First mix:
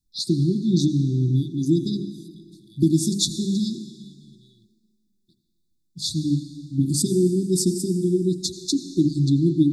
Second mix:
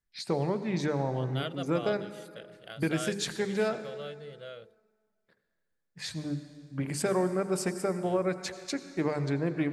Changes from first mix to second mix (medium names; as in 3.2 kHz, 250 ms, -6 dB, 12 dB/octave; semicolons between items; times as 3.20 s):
first voice -12.0 dB; master: remove brick-wall FIR band-stop 380–3400 Hz